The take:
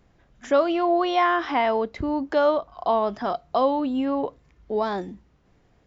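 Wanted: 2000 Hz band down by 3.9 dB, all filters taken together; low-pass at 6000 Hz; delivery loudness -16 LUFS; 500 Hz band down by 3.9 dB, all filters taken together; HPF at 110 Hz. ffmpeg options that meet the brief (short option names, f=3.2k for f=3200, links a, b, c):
-af "highpass=110,lowpass=6k,equalizer=f=500:t=o:g=-5,equalizer=f=2k:t=o:g=-4.5,volume=10.5dB"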